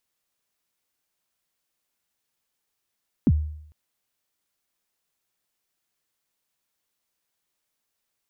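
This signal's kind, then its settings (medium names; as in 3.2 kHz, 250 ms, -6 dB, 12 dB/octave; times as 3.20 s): kick drum length 0.45 s, from 310 Hz, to 76 Hz, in 46 ms, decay 0.70 s, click off, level -12 dB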